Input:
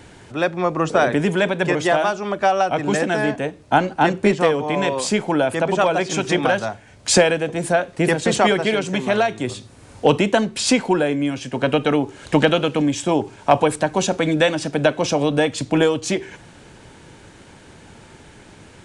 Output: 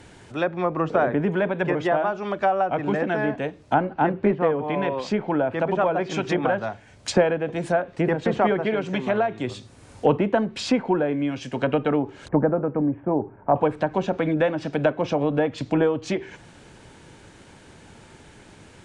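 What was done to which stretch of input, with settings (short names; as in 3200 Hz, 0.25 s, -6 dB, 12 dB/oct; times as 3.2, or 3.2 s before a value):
3.74–5.59 air absorption 130 m
12.28–13.56 Bessel low-pass 1000 Hz, order 8
whole clip: treble ducked by the level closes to 1500 Hz, closed at -14.5 dBFS; gain -3.5 dB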